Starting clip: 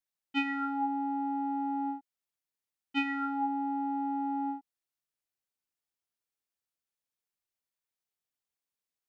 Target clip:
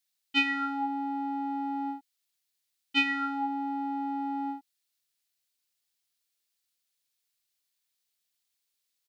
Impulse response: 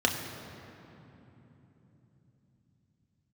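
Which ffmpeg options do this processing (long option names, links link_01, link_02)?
-af "firequalizer=gain_entry='entry(950,0);entry(1800,6);entry(4100,14);entry(5800,11)':delay=0.05:min_phase=1"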